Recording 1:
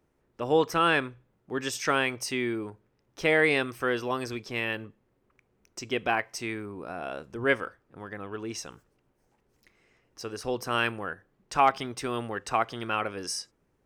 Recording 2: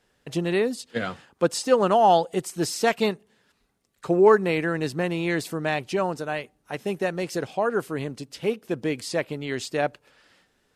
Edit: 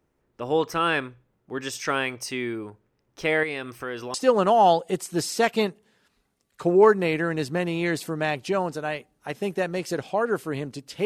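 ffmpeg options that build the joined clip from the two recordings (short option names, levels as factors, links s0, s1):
-filter_complex "[0:a]asettb=1/sr,asplit=3[s0][s1][s2];[s0]atrim=end=3.434[s3];[s1]atrim=start=3.43:end=4.14,asetpts=PTS-STARTPTS,afade=t=in:d=0.004:c=qsin,afade=t=out:st=0.706:d=0.004:c=qsin,acompressor=threshold=0.0282:ratio=2:attack=3.2:release=140:knee=1:detection=peak[s4];[s2]atrim=start=4.136[s5];[s3][s4]acrossfade=d=0.004:c1=hsin:c2=qsin[s6];[s6][s5]acrossfade=d=0.004:c1=qsin:c2=hsin,apad=whole_dur=11.05,atrim=end=11.05,atrim=end=4.142[s7];[1:a]atrim=start=1.578:end=8.49[s8];[s7][s8]acrossfade=d=0.004:c1=hsin:c2=hsin"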